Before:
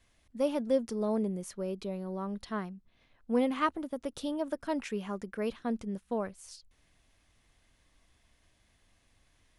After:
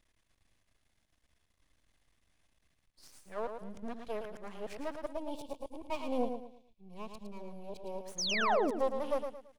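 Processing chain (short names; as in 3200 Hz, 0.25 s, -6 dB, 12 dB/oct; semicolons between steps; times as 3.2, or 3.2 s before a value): whole clip reversed; half-wave rectifier; painted sound fall, 8.18–8.71, 230–6800 Hz -30 dBFS; dynamic EQ 670 Hz, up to +7 dB, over -47 dBFS, Q 0.89; spectral gain 5.07–8, 1100–2200 Hz -16 dB; on a send: feedback echo 0.111 s, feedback 32%, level -7 dB; on the sum: gain -4.5 dB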